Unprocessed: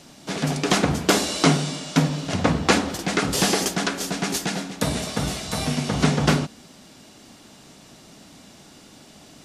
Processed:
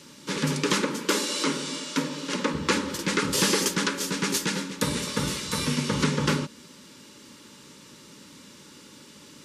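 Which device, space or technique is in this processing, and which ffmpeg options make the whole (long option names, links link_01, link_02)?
PA system with an anti-feedback notch: -filter_complex "[0:a]highpass=frequency=150:poles=1,asuperstop=centerf=710:order=12:qfactor=2.9,alimiter=limit=-11dB:level=0:latency=1:release=318,asettb=1/sr,asplit=3[link_01][link_02][link_03];[link_01]atrim=end=0.824[link_04];[link_02]atrim=start=0.82:end=2.54,asetpts=PTS-STARTPTS,afade=type=in:duration=0.004:curve=qsin,afade=type=out:start_time=1.716:duration=0.004:curve=qsin,highpass=frequency=210:width=0.5412,highpass=frequency=210:width=1.3066[link_05];[link_03]atrim=start=2.536[link_06];[link_04][link_05]acrossfade=duration=0.004:curve1=hsin:curve2=qsin[link_07];[link_07][link_06]acrossfade=duration=0.004:curve1=qsin:curve2=hsin"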